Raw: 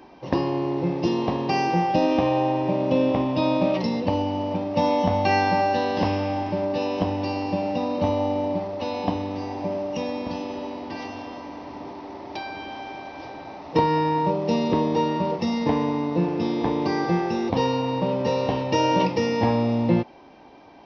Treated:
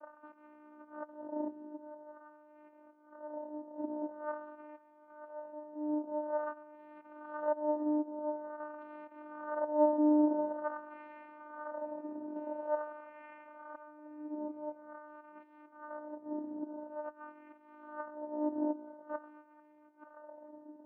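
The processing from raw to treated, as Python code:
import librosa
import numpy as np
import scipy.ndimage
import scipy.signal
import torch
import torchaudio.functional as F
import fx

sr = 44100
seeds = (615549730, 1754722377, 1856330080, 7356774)

y = scipy.signal.sosfilt(scipy.signal.butter(2, 160.0, 'highpass', fs=sr, output='sos'), x)
y = fx.over_compress(y, sr, threshold_db=-29.0, ratio=-0.5)
y = fx.wah_lfo(y, sr, hz=0.47, low_hz=480.0, high_hz=1500.0, q=13.0)
y = fx.vocoder(y, sr, bands=8, carrier='saw', carrier_hz=301.0)
y = fx.air_absorb(y, sr, metres=470.0)
y = fx.echo_wet_highpass(y, sr, ms=441, feedback_pct=59, hz=1500.0, wet_db=-16)
y = F.gain(torch.from_numpy(y), 6.0).numpy()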